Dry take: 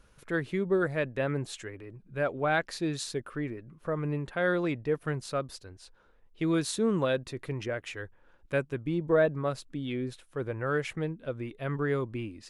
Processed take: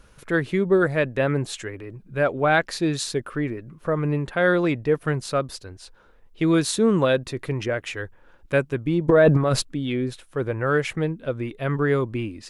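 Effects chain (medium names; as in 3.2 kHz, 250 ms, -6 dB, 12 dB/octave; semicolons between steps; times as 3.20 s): 9.08–9.62 s: transient shaper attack -2 dB, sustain +12 dB; trim +8 dB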